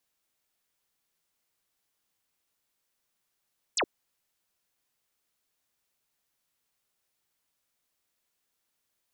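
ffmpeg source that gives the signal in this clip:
-f lavfi -i "aevalsrc='0.0631*clip(t/0.002,0,1)*clip((0.07-t)/0.002,0,1)*sin(2*PI*9000*0.07/log(280/9000)*(exp(log(280/9000)*t/0.07)-1))':d=0.07:s=44100"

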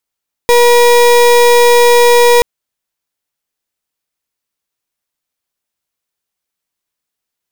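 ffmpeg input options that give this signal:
-f lavfi -i "aevalsrc='0.473*(2*lt(mod(480*t,1),0.32)-1)':d=1.93:s=44100"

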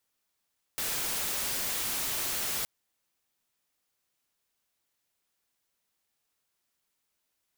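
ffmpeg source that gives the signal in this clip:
-f lavfi -i "anoisesrc=c=white:a=0.0435:d=1.87:r=44100:seed=1"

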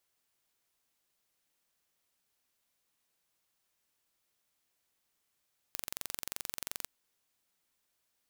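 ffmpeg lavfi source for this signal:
-f lavfi -i "aevalsrc='0.316*eq(mod(n,1934),0)':d=1.11:s=44100"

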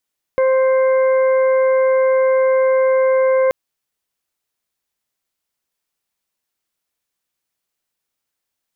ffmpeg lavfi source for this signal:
-f lavfi -i "aevalsrc='0.266*sin(2*PI*524*t)+0.0596*sin(2*PI*1048*t)+0.0282*sin(2*PI*1572*t)+0.0335*sin(2*PI*2096*t)':d=3.13:s=44100"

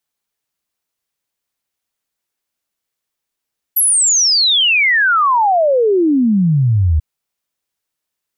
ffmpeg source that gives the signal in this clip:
-f lavfi -i "aevalsrc='0.335*clip(min(t,3.24-t)/0.01,0,1)*sin(2*PI*12000*3.24/log(73/12000)*(exp(log(73/12000)*t/3.24)-1))':d=3.24:s=44100"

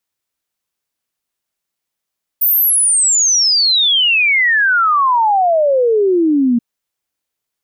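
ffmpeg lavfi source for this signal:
-f lavfi -i "aevalsrc='0.335*clip(min(t,4.18-t)/0.01,0,1)*sin(2*PI*15000*4.18/log(230/15000)*(exp(log(230/15000)*t/4.18)-1))':d=4.18:s=44100"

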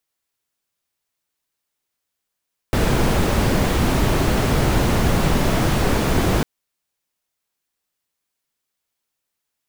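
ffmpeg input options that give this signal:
-f lavfi -i "anoisesrc=c=brown:a=0.661:d=3.7:r=44100:seed=1"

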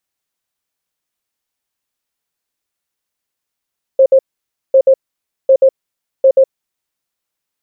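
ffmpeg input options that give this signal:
-f lavfi -i "aevalsrc='0.631*sin(2*PI*533*t)*clip(min(mod(mod(t,0.75),0.13),0.07-mod(mod(t,0.75),0.13))/0.005,0,1)*lt(mod(t,0.75),0.26)':d=3:s=44100"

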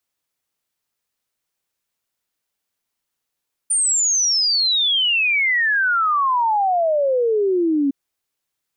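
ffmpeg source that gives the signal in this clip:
-f lavfi -i "aevalsrc='0.178*clip(min(t,4.21-t)/0.01,0,1)*sin(2*PI*9200*4.21/log(270/9200)*(exp(log(270/9200)*t/4.21)-1))':d=4.21:s=44100"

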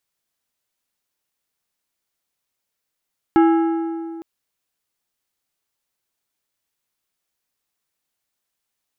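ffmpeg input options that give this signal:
-f lavfi -i "aevalsrc='0.335*pow(10,-3*t/2.37)*sin(2*PI*330*t)+0.15*pow(10,-3*t/1.8)*sin(2*PI*825*t)+0.0668*pow(10,-3*t/1.564)*sin(2*PI*1320*t)+0.0299*pow(10,-3*t/1.462)*sin(2*PI*1650*t)+0.0133*pow(10,-3*t/1.352)*sin(2*PI*2145*t)+0.00596*pow(10,-3*t/1.247)*sin(2*PI*2805*t)+0.00266*pow(10,-3*t/1.226)*sin(2*PI*2970*t)+0.00119*pow(10,-3*t/1.188)*sin(2*PI*3300*t)':d=0.86:s=44100"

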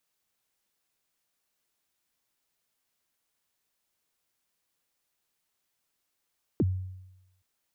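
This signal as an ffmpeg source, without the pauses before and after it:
-f lavfi -i "aevalsrc='0.106*pow(10,-3*t/0.95)*sin(2*PI*(420*0.038/log(93/420)*(exp(log(93/420)*min(t,0.038)/0.038)-1)+93*max(t-0.038,0)))':d=0.82:s=44100"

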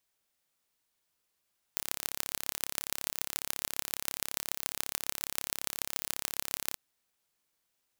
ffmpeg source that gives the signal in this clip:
-f lavfi -i "aevalsrc='0.75*eq(mod(n,1275),0)*(0.5+0.5*eq(mod(n,6375),0))':d=4.98:s=44100"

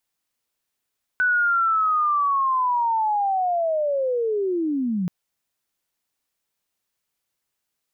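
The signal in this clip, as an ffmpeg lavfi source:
-f lavfi -i "aevalsrc='pow(10,(-16.5-4.5*t/3.88)/20)*sin(2*PI*(1500*t-1330*t*t/(2*3.88)))':d=3.88:s=44100"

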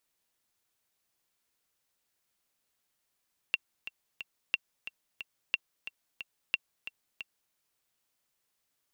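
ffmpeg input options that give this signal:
-f lavfi -i "aevalsrc='pow(10,(-13-13*gte(mod(t,3*60/180),60/180))/20)*sin(2*PI*2730*mod(t,60/180))*exp(-6.91*mod(t,60/180)/0.03)':d=4:s=44100"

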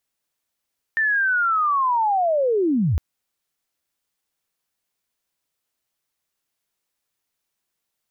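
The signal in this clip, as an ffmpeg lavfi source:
-f lavfi -i "aevalsrc='pow(10,(-17+0.5*t/2.01)/20)*sin(2*PI*(1800*t-1739*t*t/(2*2.01)))':d=2.01:s=44100"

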